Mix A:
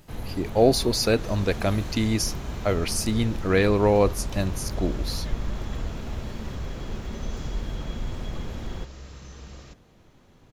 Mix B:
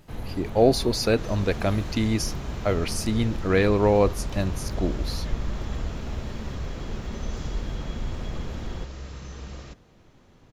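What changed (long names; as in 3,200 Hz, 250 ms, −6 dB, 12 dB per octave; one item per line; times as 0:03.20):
second sound +4.5 dB
master: add high-shelf EQ 5,000 Hz −5.5 dB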